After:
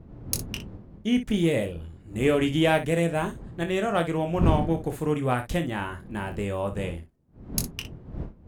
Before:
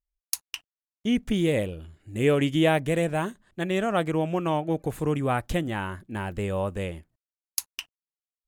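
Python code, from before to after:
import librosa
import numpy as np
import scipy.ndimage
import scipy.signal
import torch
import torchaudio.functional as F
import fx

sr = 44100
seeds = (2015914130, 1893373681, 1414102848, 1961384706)

y = fx.dmg_wind(x, sr, seeds[0], corner_hz=180.0, level_db=-35.0)
y = fx.room_early_taps(y, sr, ms=(24, 60), db=(-7.5, -11.5))
y = fx.cheby_harmonics(y, sr, harmonics=(7,), levels_db=(-35,), full_scale_db=-5.0)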